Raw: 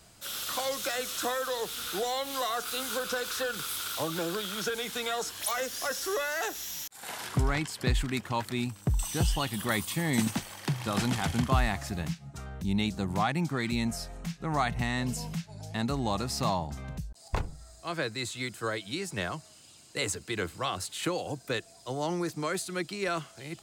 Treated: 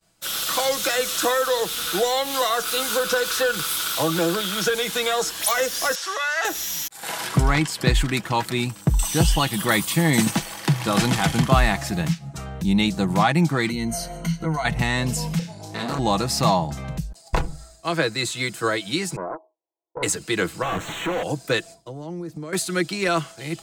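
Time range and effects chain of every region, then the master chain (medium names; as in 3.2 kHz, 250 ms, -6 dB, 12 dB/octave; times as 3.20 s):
5.95–6.45 s: high-pass 830 Hz + distance through air 71 m
13.69–14.65 s: compression 10:1, threshold -34 dBFS + rippled EQ curve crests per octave 1.9, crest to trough 15 dB
15.39–15.99 s: high-pass 130 Hz 6 dB/octave + flutter echo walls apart 5 m, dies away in 0.33 s + transformer saturation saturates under 1.1 kHz
19.16–20.03 s: brick-wall FIR band-pass 310–1100 Hz + bass shelf 490 Hz -3 dB + loudspeaker Doppler distortion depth 0.5 ms
20.62–21.23 s: one-bit comparator + boxcar filter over 9 samples
21.74–22.53 s: tilt shelf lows +7 dB, about 690 Hz + compression 5:1, threshold -42 dBFS
whole clip: expander -45 dBFS; peaking EQ 96 Hz -6 dB 0.44 oct; comb 6.1 ms, depth 40%; trim +9 dB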